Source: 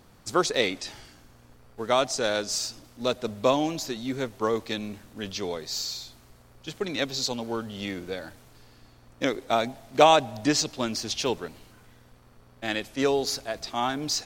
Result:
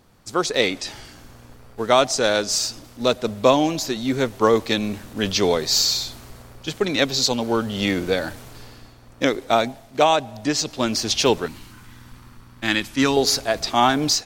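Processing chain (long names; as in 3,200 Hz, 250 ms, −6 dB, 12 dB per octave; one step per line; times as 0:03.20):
0:11.46–0:13.17: flat-topped bell 550 Hz −10.5 dB 1.1 octaves
automatic gain control gain up to 14 dB
level −1 dB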